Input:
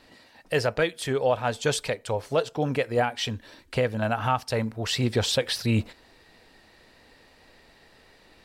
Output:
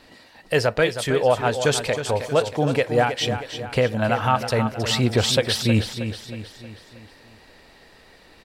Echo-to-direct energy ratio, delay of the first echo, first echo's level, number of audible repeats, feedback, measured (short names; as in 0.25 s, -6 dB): -8.5 dB, 0.316 s, -9.5 dB, 5, 49%